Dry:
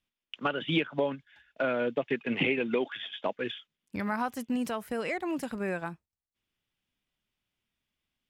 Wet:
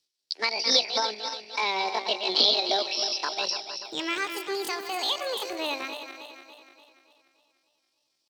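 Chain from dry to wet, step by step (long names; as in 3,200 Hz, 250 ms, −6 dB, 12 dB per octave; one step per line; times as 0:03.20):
feedback delay that plays each chunk backwards 146 ms, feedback 70%, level −8 dB
meter weighting curve D
pitch shifter +8 semitones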